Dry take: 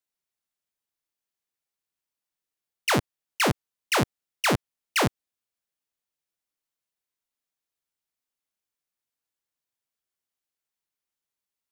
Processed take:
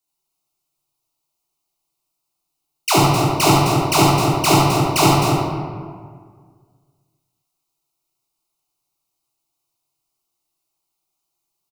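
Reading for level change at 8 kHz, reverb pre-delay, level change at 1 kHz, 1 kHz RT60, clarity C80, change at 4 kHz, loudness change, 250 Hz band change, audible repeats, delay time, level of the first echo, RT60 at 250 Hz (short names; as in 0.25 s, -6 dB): +12.0 dB, 14 ms, +13.5 dB, 1.8 s, -0.5 dB, +10.0 dB, +11.0 dB, +13.0 dB, 2, 71 ms, -3.5 dB, 2.1 s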